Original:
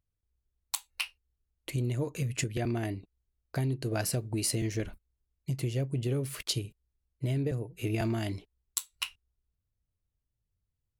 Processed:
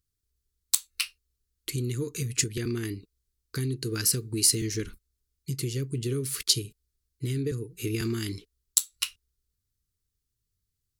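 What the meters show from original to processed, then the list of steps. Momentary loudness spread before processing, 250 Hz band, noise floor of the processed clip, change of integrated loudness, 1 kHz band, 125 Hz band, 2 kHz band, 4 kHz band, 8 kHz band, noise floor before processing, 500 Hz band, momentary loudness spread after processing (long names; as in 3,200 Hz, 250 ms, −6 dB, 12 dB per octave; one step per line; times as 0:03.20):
7 LU, +1.5 dB, −82 dBFS, +4.5 dB, −7.0 dB, 0.0 dB, +1.5 dB, +7.5 dB, +10.0 dB, −84 dBFS, +1.0 dB, 12 LU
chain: pitch vibrato 0.77 Hz 22 cents
drawn EQ curve 170 Hz 0 dB, 450 Hz +3 dB, 650 Hz −28 dB, 1,200 Hz +2 dB, 2,700 Hz +1 dB, 4,400 Hz +10 dB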